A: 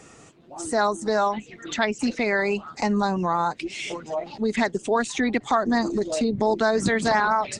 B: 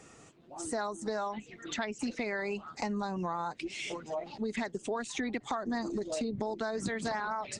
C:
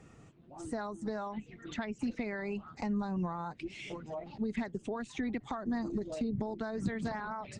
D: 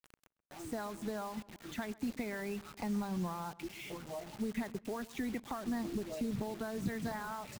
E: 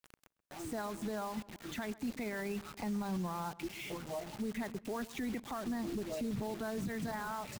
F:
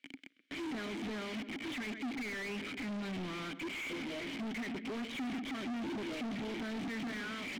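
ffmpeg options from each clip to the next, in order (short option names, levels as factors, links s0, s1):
-af "acompressor=threshold=0.0631:ratio=6,volume=0.473"
-af "bass=f=250:g=11,treble=f=4000:g=-8,volume=0.562"
-filter_complex "[0:a]acrusher=bits=7:mix=0:aa=0.000001,asplit=2[s0][s1];[s1]adelay=131,lowpass=f=1800:p=1,volume=0.112,asplit=2[s2][s3];[s3]adelay=131,lowpass=f=1800:p=1,volume=0.46,asplit=2[s4][s5];[s5]adelay=131,lowpass=f=1800:p=1,volume=0.46,asplit=2[s6][s7];[s7]adelay=131,lowpass=f=1800:p=1,volume=0.46[s8];[s0][s2][s4][s6][s8]amix=inputs=5:normalize=0,volume=0.75"
-af "alimiter=level_in=2.82:limit=0.0631:level=0:latency=1:release=26,volume=0.355,volume=1.33"
-filter_complex "[0:a]asplit=3[s0][s1][s2];[s0]bandpass=f=270:t=q:w=8,volume=1[s3];[s1]bandpass=f=2290:t=q:w=8,volume=0.501[s4];[s2]bandpass=f=3010:t=q:w=8,volume=0.355[s5];[s3][s4][s5]amix=inputs=3:normalize=0,asplit=2[s6][s7];[s7]highpass=f=720:p=1,volume=100,asoftclip=type=tanh:threshold=0.0211[s8];[s6][s8]amix=inputs=2:normalize=0,lowpass=f=2600:p=1,volume=0.501,volume=1.19"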